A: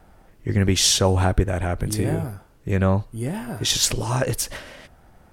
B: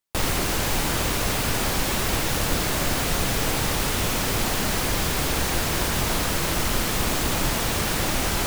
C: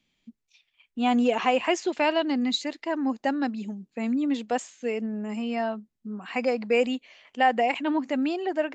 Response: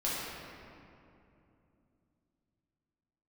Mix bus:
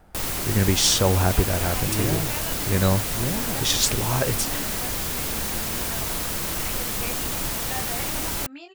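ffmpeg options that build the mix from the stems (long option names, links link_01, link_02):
-filter_complex "[0:a]volume=-1.5dB[link_01];[1:a]highshelf=frequency=7400:gain=9.5,volume=-6.5dB[link_02];[2:a]equalizer=frequency=370:width_type=o:width=1.7:gain=-12.5,flanger=delay=17.5:depth=5:speed=0.48,acompressor=threshold=-45dB:ratio=1.5,adelay=300,volume=0.5dB[link_03];[link_01][link_02][link_03]amix=inputs=3:normalize=0"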